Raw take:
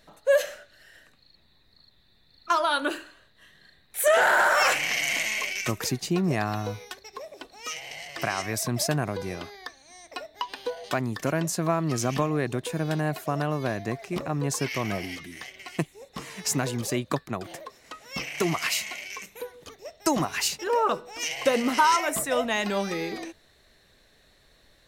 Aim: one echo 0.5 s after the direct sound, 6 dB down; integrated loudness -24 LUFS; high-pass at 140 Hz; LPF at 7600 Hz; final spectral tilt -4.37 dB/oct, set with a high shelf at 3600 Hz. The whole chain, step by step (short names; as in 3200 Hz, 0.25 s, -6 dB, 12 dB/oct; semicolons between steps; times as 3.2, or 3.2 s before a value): HPF 140 Hz; LPF 7600 Hz; high shelf 3600 Hz -5 dB; echo 0.5 s -6 dB; gain +3.5 dB